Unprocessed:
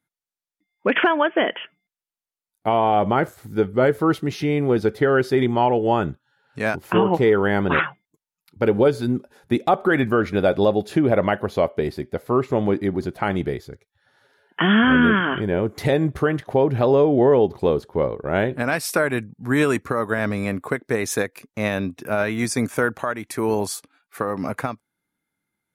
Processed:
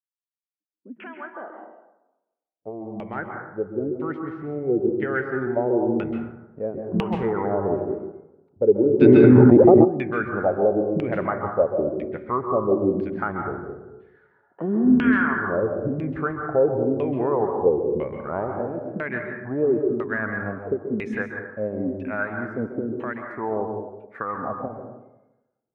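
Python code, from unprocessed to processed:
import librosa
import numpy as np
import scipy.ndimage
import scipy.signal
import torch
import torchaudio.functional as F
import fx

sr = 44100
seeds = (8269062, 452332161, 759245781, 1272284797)

y = fx.fade_in_head(x, sr, length_s=5.9)
y = fx.dynamic_eq(y, sr, hz=3500.0, q=0.96, threshold_db=-42.0, ratio=4.0, max_db=-6)
y = fx.filter_lfo_lowpass(y, sr, shape='saw_down', hz=1.0, low_hz=200.0, high_hz=2700.0, q=5.0)
y = fx.rev_plate(y, sr, seeds[0], rt60_s=0.97, hf_ratio=0.4, predelay_ms=120, drr_db=3.0)
y = fx.env_flatten(y, sr, amount_pct=100, at=(9.0, 9.84), fade=0.02)
y = y * librosa.db_to_amplitude(-10.0)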